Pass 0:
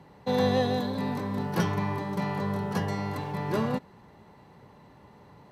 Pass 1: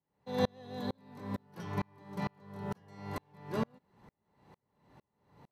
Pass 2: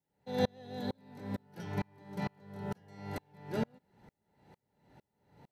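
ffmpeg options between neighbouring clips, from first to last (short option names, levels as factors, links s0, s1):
-af "aeval=exprs='val(0)*pow(10,-38*if(lt(mod(-2.2*n/s,1),2*abs(-2.2)/1000),1-mod(-2.2*n/s,1)/(2*abs(-2.2)/1000),(mod(-2.2*n/s,1)-2*abs(-2.2)/1000)/(1-2*abs(-2.2)/1000))/20)':c=same,volume=0.841"
-af "asuperstop=centerf=1100:order=4:qfactor=4.1"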